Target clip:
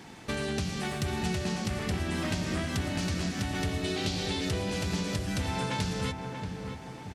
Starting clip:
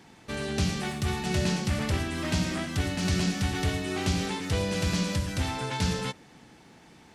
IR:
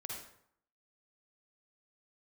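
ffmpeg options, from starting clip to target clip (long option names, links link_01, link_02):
-filter_complex "[0:a]asettb=1/sr,asplit=3[link_01][link_02][link_03];[link_01]atrim=end=3.844[link_04];[link_02]atrim=start=3.84:end=4.49,asetpts=PTS-STARTPTS,afade=type=in:duration=0.004:curve=qsin,afade=type=out:start_time=0.646:duration=0.004:curve=qsin,equalizer=frequency=500:width_type=o:width=1:gain=6,equalizer=frequency=1000:width_type=o:width=1:gain=-5,equalizer=frequency=4000:width_type=o:width=1:gain=9[link_05];[link_03]atrim=start=4.486[link_06];[link_04][link_05]acrossfade=duration=0.004:curve1=hsin:curve2=qsin[link_07];[link_07][link_06]acrossfade=duration=0.004:curve1=qsin:curve2=hsin,acompressor=threshold=-34dB:ratio=10,asplit=2[link_08][link_09];[link_09]adelay=633,lowpass=frequency=1500:poles=1,volume=-5.5dB,asplit=2[link_10][link_11];[link_11]adelay=633,lowpass=frequency=1500:poles=1,volume=0.5,asplit=2[link_12][link_13];[link_13]adelay=633,lowpass=frequency=1500:poles=1,volume=0.5,asplit=2[link_14][link_15];[link_15]adelay=633,lowpass=frequency=1500:poles=1,volume=0.5,asplit=2[link_16][link_17];[link_17]adelay=633,lowpass=frequency=1500:poles=1,volume=0.5,asplit=2[link_18][link_19];[link_19]adelay=633,lowpass=frequency=1500:poles=1,volume=0.5[link_20];[link_10][link_12][link_14][link_16][link_18][link_20]amix=inputs=6:normalize=0[link_21];[link_08][link_21]amix=inputs=2:normalize=0,volume=5.5dB"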